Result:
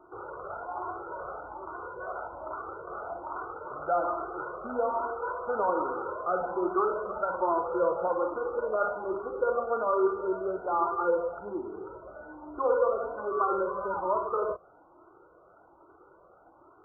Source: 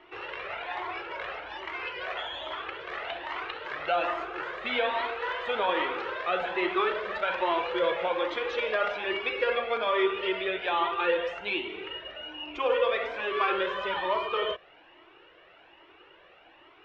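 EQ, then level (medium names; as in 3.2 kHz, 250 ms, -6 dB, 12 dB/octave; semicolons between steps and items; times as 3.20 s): high-pass 82 Hz 6 dB/octave; brick-wall FIR low-pass 1.5 kHz; bass shelf 150 Hz +8 dB; 0.0 dB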